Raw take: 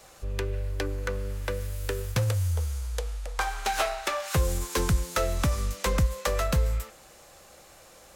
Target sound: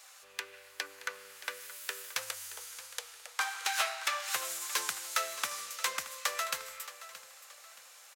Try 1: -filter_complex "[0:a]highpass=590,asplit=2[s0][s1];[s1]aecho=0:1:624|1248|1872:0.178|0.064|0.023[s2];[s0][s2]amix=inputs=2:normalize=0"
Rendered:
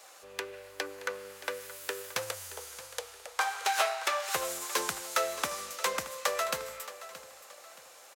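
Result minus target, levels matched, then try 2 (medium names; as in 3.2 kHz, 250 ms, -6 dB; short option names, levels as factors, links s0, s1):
500 Hz band +9.0 dB
-filter_complex "[0:a]highpass=1300,asplit=2[s0][s1];[s1]aecho=0:1:624|1248|1872:0.178|0.064|0.023[s2];[s0][s2]amix=inputs=2:normalize=0"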